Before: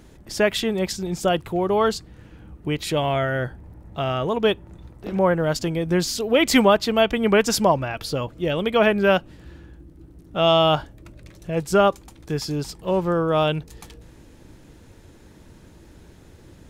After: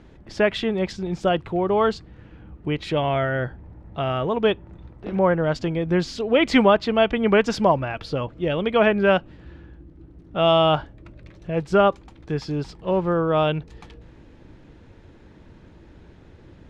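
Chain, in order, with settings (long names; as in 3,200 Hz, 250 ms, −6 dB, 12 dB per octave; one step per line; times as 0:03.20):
low-pass filter 3,300 Hz 12 dB per octave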